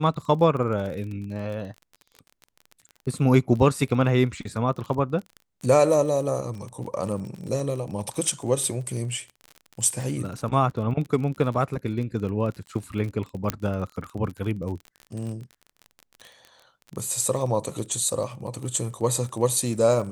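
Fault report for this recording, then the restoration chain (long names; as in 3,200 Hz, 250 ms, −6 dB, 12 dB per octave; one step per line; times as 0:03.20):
surface crackle 30 per second −32 dBFS
0:13.50: click −8 dBFS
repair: click removal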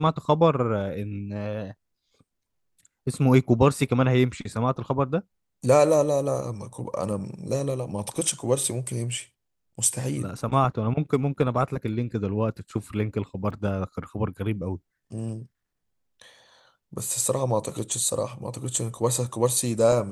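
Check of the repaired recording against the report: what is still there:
0:13.50: click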